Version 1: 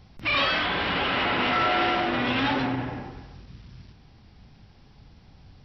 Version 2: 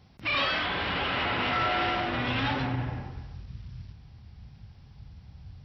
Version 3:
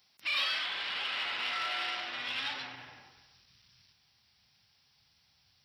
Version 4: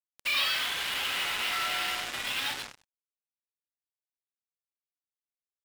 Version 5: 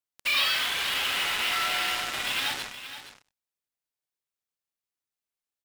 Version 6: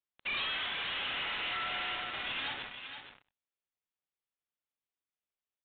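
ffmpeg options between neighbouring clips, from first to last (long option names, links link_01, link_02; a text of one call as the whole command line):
ffmpeg -i in.wav -af "highpass=67,asubboost=boost=6.5:cutoff=120,volume=-3.5dB" out.wav
ffmpeg -i in.wav -af "aeval=exprs='0.15*(cos(1*acos(clip(val(0)/0.15,-1,1)))-cos(1*PI/2))+0.00106*(cos(5*acos(clip(val(0)/0.15,-1,1)))-cos(5*PI/2))+0.00168*(cos(7*acos(clip(val(0)/0.15,-1,1)))-cos(7*PI/2))':channel_layout=same,aderivative,volume=5.5dB" out.wav
ffmpeg -i in.wav -af "acrusher=bits=5:mix=0:aa=0.5,volume=3.5dB" out.wav
ffmpeg -i in.wav -af "aecho=1:1:470:0.251,volume=3dB" out.wav
ffmpeg -i in.wav -af "aresample=8000,asoftclip=type=tanh:threshold=-28.5dB,aresample=44100,volume=-3.5dB" -ar 48000 -c:a wmav2 -b:a 128k out.wma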